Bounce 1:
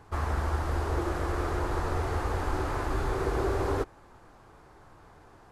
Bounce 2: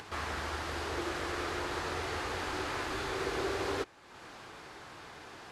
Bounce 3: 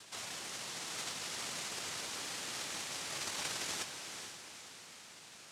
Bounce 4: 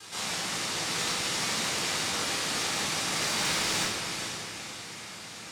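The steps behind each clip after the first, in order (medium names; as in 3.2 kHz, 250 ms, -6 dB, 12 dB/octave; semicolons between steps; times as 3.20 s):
frequency weighting D; upward compressor, threshold -34 dBFS; trim -4.5 dB
noise-vocoded speech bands 1; echo that smears into a reverb 452 ms, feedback 42%, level -6.5 dB; trim -6.5 dB
hard clipper -33.5 dBFS, distortion -22 dB; simulated room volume 580 m³, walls mixed, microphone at 3.9 m; trim +3 dB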